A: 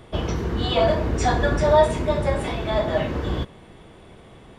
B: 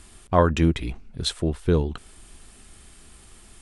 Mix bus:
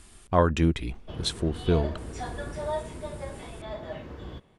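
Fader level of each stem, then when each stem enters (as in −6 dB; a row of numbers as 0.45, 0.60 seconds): −15.0, −3.0 decibels; 0.95, 0.00 seconds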